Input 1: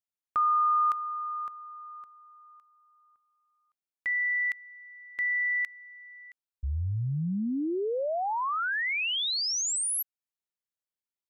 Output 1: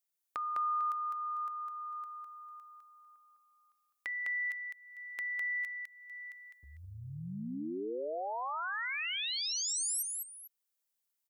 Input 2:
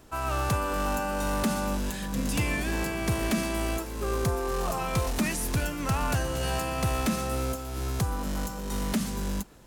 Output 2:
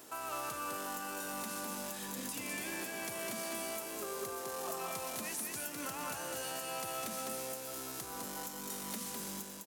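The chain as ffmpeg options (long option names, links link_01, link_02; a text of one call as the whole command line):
ffmpeg -i in.wav -filter_complex "[0:a]highpass=280,highshelf=frequency=6300:gain=11.5,alimiter=limit=-18dB:level=0:latency=1:release=214,acompressor=threshold=-42dB:ratio=2.5:attack=4.9:release=643:knee=6:detection=peak,asplit=2[link_01][link_02];[link_02]aecho=0:1:205|449:0.668|0.178[link_03];[link_01][link_03]amix=inputs=2:normalize=0" out.wav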